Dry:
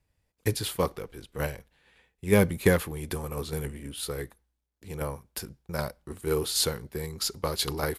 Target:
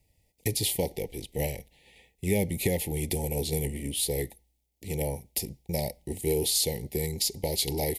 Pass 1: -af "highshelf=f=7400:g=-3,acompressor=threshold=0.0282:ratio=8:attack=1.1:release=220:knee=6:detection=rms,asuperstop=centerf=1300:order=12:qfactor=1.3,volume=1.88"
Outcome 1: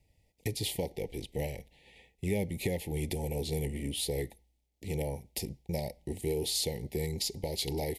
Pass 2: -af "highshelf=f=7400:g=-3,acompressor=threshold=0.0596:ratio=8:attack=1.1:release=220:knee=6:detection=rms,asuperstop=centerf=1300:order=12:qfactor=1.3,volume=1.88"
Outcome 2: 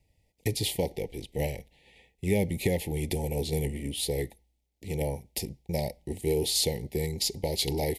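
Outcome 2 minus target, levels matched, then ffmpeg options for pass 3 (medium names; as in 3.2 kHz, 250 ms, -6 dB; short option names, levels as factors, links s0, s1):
8 kHz band -3.0 dB
-af "highshelf=f=7400:g=7.5,acompressor=threshold=0.0596:ratio=8:attack=1.1:release=220:knee=6:detection=rms,asuperstop=centerf=1300:order=12:qfactor=1.3,volume=1.88"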